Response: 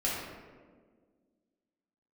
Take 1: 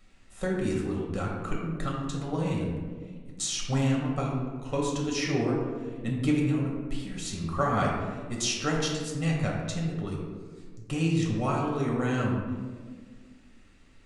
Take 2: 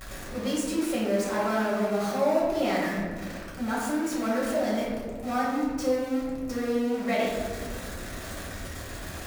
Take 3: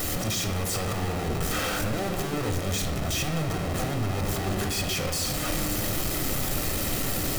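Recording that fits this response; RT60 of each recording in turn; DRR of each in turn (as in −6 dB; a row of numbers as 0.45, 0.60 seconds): 2; 1.6, 1.6, 1.6 seconds; −2.5, −7.0, 3.5 decibels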